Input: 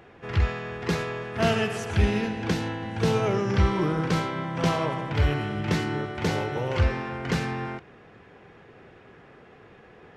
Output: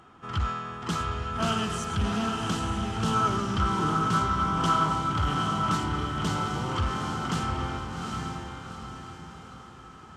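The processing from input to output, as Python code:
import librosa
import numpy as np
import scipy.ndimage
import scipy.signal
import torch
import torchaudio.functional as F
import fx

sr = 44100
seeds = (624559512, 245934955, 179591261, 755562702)

y = fx.graphic_eq(x, sr, hz=(250, 500, 1000, 2000, 8000), db=(5, -9, 7, -6, 11))
y = fx.echo_diffused(y, sr, ms=796, feedback_pct=44, wet_db=-4.0)
y = 10.0 ** (-15.0 / 20.0) * np.tanh(y / 10.0 ** (-15.0 / 20.0))
y = fx.small_body(y, sr, hz=(1300.0, 3100.0), ring_ms=50, db=17)
y = fx.doppler_dist(y, sr, depth_ms=0.12)
y = y * librosa.db_to_amplitude(-4.5)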